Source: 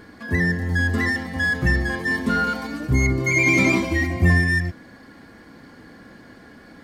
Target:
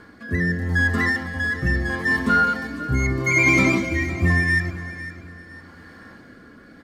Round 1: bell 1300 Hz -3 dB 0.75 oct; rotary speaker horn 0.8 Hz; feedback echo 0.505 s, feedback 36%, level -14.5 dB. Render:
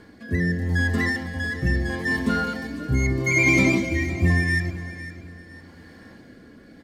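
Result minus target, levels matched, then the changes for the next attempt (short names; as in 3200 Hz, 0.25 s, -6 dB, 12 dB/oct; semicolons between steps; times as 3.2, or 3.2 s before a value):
1000 Hz band -5.5 dB
change: bell 1300 Hz +7.5 dB 0.75 oct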